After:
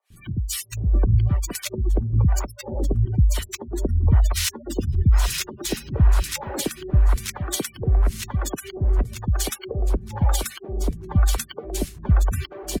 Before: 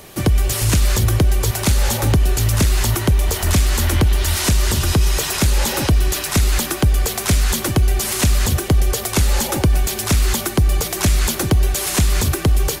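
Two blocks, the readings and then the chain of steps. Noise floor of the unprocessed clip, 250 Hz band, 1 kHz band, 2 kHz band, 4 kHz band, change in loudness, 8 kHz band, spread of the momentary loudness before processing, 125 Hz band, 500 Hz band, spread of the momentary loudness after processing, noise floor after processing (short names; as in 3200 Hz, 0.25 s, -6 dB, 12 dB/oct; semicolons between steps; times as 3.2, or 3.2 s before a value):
-27 dBFS, -7.5 dB, -9.0 dB, -11.0 dB, -9.5 dB, -6.0 dB, -10.0 dB, 2 LU, -4.5 dB, -7.5 dB, 9 LU, -47 dBFS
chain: spectral gate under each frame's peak -20 dB strong; harmonic tremolo 1 Hz, depth 100%, crossover 620 Hz; three bands offset in time highs, lows, mids 0.1/0.77 s, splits 230/1600 Hz; decimation joined by straight lines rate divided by 2×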